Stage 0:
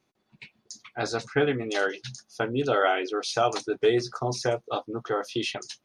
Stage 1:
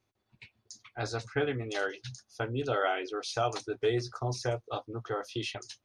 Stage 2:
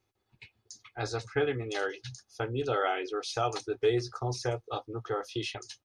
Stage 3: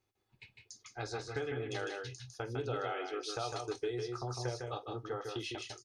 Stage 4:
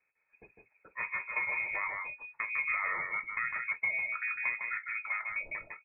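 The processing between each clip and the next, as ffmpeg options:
ffmpeg -i in.wav -af "lowshelf=frequency=130:width_type=q:width=3:gain=6.5,volume=-6dB" out.wav
ffmpeg -i in.wav -af "aecho=1:1:2.4:0.34" out.wav
ffmpeg -i in.wav -af "acompressor=threshold=-33dB:ratio=2.5,aecho=1:1:48|154|179:0.106|0.596|0.224,volume=-4dB" out.wav
ffmpeg -i in.wav -af "lowpass=frequency=2200:width_type=q:width=0.5098,lowpass=frequency=2200:width_type=q:width=0.6013,lowpass=frequency=2200:width_type=q:width=0.9,lowpass=frequency=2200:width_type=q:width=2.563,afreqshift=-2600,volume=4dB" out.wav

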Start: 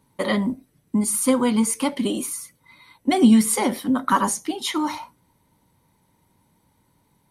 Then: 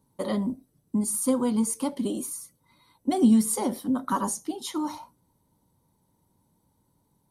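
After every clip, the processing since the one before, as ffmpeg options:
ffmpeg -i in.wav -af "equalizer=frequency=2200:width=1:gain=-12.5,volume=-4.5dB" out.wav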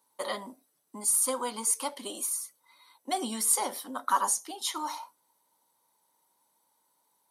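ffmpeg -i in.wav -af "highpass=850,volume=4dB" out.wav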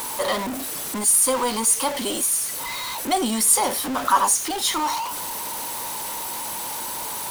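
ffmpeg -i in.wav -af "aeval=exprs='val(0)+0.5*0.0299*sgn(val(0))':channel_layout=same,volume=6.5dB" out.wav

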